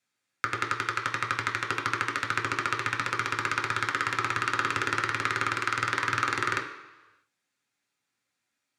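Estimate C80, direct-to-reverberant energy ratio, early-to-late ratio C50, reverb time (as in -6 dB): 11.0 dB, 0.5 dB, 8.5 dB, 1.1 s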